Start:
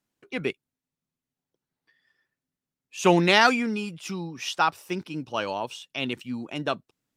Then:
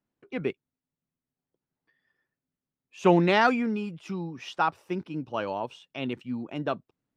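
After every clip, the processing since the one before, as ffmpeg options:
ffmpeg -i in.wav -af "lowpass=frequency=1200:poles=1" out.wav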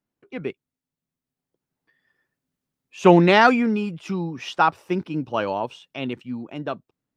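ffmpeg -i in.wav -af "dynaudnorm=framelen=200:gausssize=17:maxgain=11.5dB" out.wav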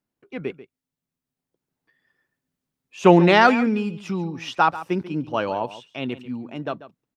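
ffmpeg -i in.wav -filter_complex "[0:a]asplit=2[link_01][link_02];[link_02]adelay=139.9,volume=-15dB,highshelf=frequency=4000:gain=-3.15[link_03];[link_01][link_03]amix=inputs=2:normalize=0" out.wav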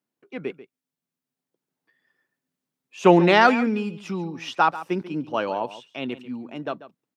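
ffmpeg -i in.wav -af "highpass=170,volume=-1dB" out.wav

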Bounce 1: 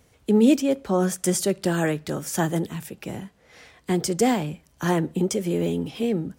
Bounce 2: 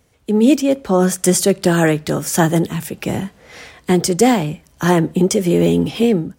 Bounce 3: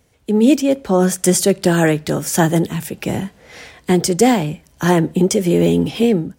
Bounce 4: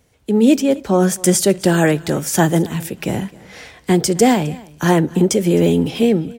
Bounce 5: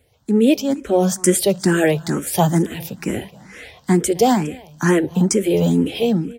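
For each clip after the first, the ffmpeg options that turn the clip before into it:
ffmpeg -i in.wav -af "dynaudnorm=framelen=120:gausssize=7:maxgain=13dB" out.wav
ffmpeg -i in.wav -af "equalizer=frequency=1200:width_type=o:width=0.29:gain=-3.5" out.wav
ffmpeg -i in.wav -af "aecho=1:1:262:0.0794" out.wav
ffmpeg -i in.wav -filter_complex "[0:a]asplit=2[link_01][link_02];[link_02]afreqshift=2.2[link_03];[link_01][link_03]amix=inputs=2:normalize=1,volume=1dB" out.wav

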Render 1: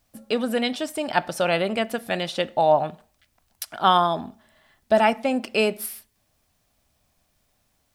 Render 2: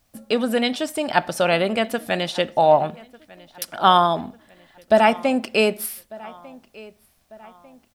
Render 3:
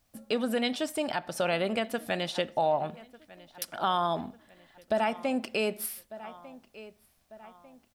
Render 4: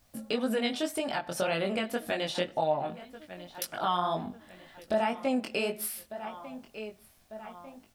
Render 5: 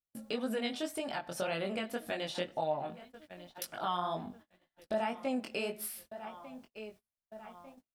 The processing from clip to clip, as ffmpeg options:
ffmpeg -i in.wav -filter_complex "[0:a]asplit=2[link_01][link_02];[link_02]adelay=1197,lowpass=frequency=3700:poles=1,volume=-22dB,asplit=2[link_03][link_04];[link_04]adelay=1197,lowpass=frequency=3700:poles=1,volume=0.47,asplit=2[link_05][link_06];[link_06]adelay=1197,lowpass=frequency=3700:poles=1,volume=0.47[link_07];[link_01][link_03][link_05][link_07]amix=inputs=4:normalize=0,volume=3dB" out.wav
ffmpeg -i in.wav -af "alimiter=limit=-11.5dB:level=0:latency=1:release=243,volume=-6dB" out.wav
ffmpeg -i in.wav -af "acompressor=threshold=-45dB:ratio=1.5,flanger=delay=18.5:depth=4.5:speed=1.9,volume=9dB" out.wav
ffmpeg -i in.wav -af "agate=range=-33dB:threshold=-48dB:ratio=16:detection=peak,volume=-5.5dB" out.wav

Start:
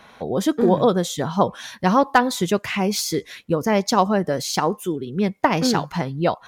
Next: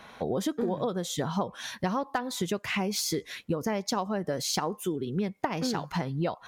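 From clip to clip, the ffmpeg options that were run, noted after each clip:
ffmpeg -i in.wav -af "acompressor=threshold=-24dB:ratio=12,volume=-1.5dB" out.wav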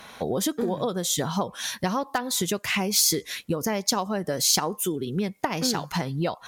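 ffmpeg -i in.wav -af "equalizer=frequency=14000:width_type=o:width=2.1:gain=11.5,volume=2.5dB" out.wav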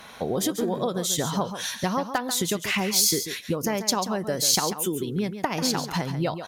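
ffmpeg -i in.wav -af "aecho=1:1:140:0.316" out.wav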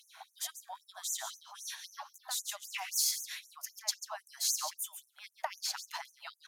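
ffmpeg -i in.wav -af "afftfilt=real='re*gte(b*sr/1024,580*pow(6000/580,0.5+0.5*sin(2*PI*3.8*pts/sr)))':imag='im*gte(b*sr/1024,580*pow(6000/580,0.5+0.5*sin(2*PI*3.8*pts/sr)))':win_size=1024:overlap=0.75,volume=-9dB" out.wav

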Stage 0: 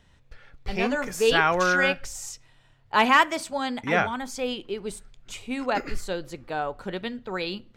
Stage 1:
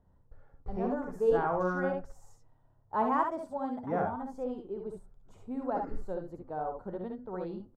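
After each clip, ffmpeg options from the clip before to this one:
ffmpeg -i in.wav -filter_complex "[0:a]firequalizer=gain_entry='entry(860,0);entry(2400,-28);entry(6500,-24);entry(12000,-21)':delay=0.05:min_phase=1,asplit=2[link_01][link_02];[link_02]aecho=0:1:60|71:0.447|0.473[link_03];[link_01][link_03]amix=inputs=2:normalize=0,volume=-7dB" out.wav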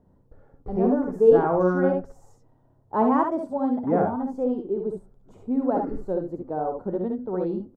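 ffmpeg -i in.wav -af "equalizer=frequency=300:width=0.48:gain=13" out.wav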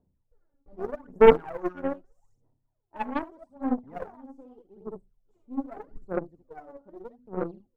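ffmpeg -i in.wav -af "aphaser=in_gain=1:out_gain=1:delay=3.6:decay=0.79:speed=0.81:type=sinusoidal,aeval=exprs='1.78*(cos(1*acos(clip(val(0)/1.78,-1,1)))-cos(1*PI/2))+0.794*(cos(2*acos(clip(val(0)/1.78,-1,1)))-cos(2*PI/2))+0.2*(cos(7*acos(clip(val(0)/1.78,-1,1)))-cos(7*PI/2))+0.112*(cos(8*acos(clip(val(0)/1.78,-1,1)))-cos(8*PI/2))':channel_layout=same,volume=-10.5dB" out.wav

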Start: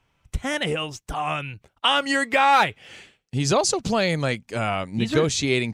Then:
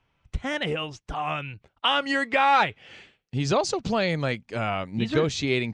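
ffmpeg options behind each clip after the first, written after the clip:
ffmpeg -i in.wav -af "lowpass=4700,volume=-2.5dB" out.wav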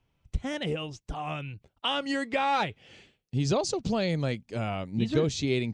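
ffmpeg -i in.wav -af "equalizer=frequency=1500:width_type=o:width=2.4:gain=-9.5" out.wav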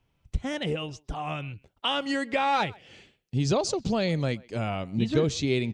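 ffmpeg -i in.wav -filter_complex "[0:a]asplit=2[link_01][link_02];[link_02]adelay=130,highpass=300,lowpass=3400,asoftclip=type=hard:threshold=-21dB,volume=-23dB[link_03];[link_01][link_03]amix=inputs=2:normalize=0,volume=1.5dB" out.wav

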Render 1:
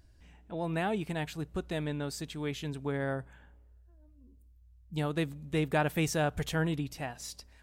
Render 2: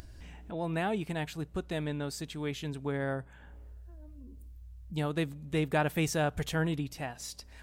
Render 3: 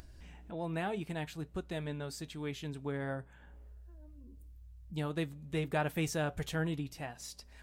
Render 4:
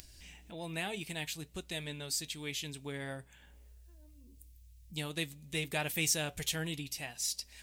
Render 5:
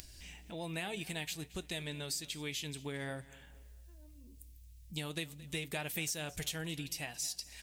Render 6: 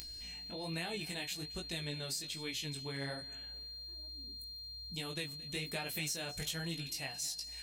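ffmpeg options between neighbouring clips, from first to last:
ffmpeg -i in.wav -af "acompressor=mode=upward:threshold=-38dB:ratio=2.5" out.wav
ffmpeg -i in.wav -af "flanger=delay=4.8:depth=2:regen=-74:speed=0.53:shape=triangular" out.wav
ffmpeg -i in.wav -af "aexciter=amount=2.7:drive=8.9:freq=2000,volume=-4.5dB" out.wav
ffmpeg -i in.wav -af "acompressor=threshold=-38dB:ratio=4,aecho=1:1:222|444|666:0.1|0.036|0.013,volume=2dB" out.wav
ffmpeg -i in.wav -af "flanger=delay=17.5:depth=5.1:speed=1.2,aeval=exprs='val(0)+0.00447*sin(2*PI*4200*n/s)':channel_layout=same,volume=2dB" out.wav

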